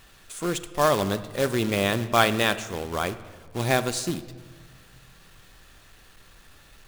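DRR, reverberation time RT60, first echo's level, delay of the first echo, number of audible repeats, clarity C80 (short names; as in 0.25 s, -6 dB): 11.0 dB, 1.6 s, none, none, none, 15.5 dB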